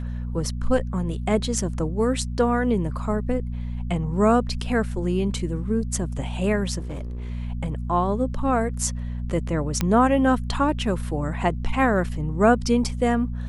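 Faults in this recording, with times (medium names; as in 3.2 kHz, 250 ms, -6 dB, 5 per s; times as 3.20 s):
hum 60 Hz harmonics 4 -29 dBFS
6.78–7.30 s: clipped -28 dBFS
9.81 s: pop -8 dBFS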